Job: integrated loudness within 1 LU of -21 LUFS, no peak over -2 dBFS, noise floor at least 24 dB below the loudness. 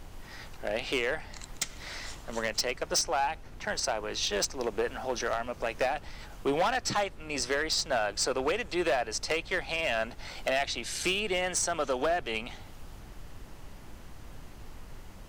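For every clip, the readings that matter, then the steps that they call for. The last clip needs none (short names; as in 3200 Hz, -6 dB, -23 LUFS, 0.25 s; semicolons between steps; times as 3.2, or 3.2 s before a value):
clipped 1.1%; flat tops at -22.0 dBFS; noise floor -48 dBFS; noise floor target -55 dBFS; loudness -30.5 LUFS; peak -22.0 dBFS; loudness target -21.0 LUFS
-> clip repair -22 dBFS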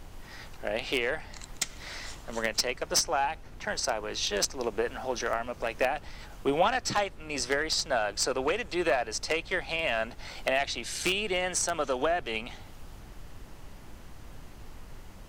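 clipped 0.0%; noise floor -48 dBFS; noise floor target -54 dBFS
-> noise print and reduce 6 dB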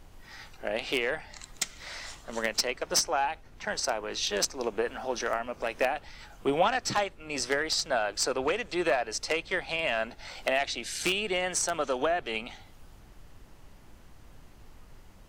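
noise floor -53 dBFS; noise floor target -54 dBFS
-> noise print and reduce 6 dB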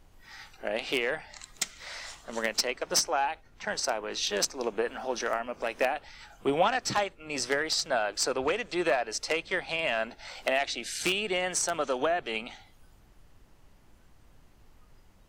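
noise floor -58 dBFS; loudness -30.0 LUFS; peak -13.0 dBFS; loudness target -21.0 LUFS
-> gain +9 dB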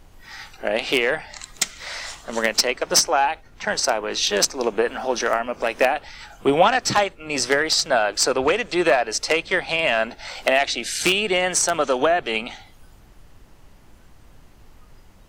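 loudness -21.0 LUFS; peak -4.0 dBFS; noise floor -49 dBFS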